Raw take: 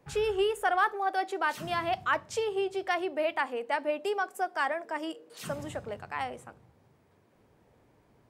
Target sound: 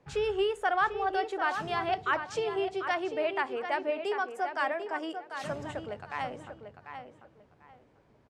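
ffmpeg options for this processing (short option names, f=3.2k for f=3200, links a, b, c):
-filter_complex "[0:a]lowpass=6.3k,asplit=2[a][b];[b]adelay=744,lowpass=f=3.3k:p=1,volume=-8dB,asplit=2[c][d];[d]adelay=744,lowpass=f=3.3k:p=1,volume=0.23,asplit=2[e][f];[f]adelay=744,lowpass=f=3.3k:p=1,volume=0.23[g];[a][c][e][g]amix=inputs=4:normalize=0,volume=-1dB"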